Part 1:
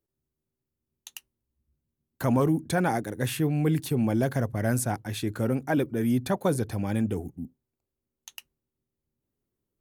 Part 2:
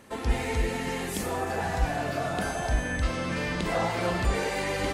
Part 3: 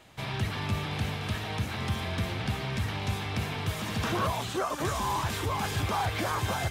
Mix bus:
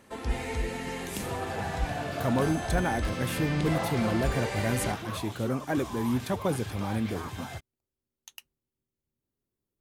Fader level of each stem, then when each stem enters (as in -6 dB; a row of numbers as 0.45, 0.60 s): -3.5, -4.0, -9.5 dB; 0.00, 0.00, 0.90 s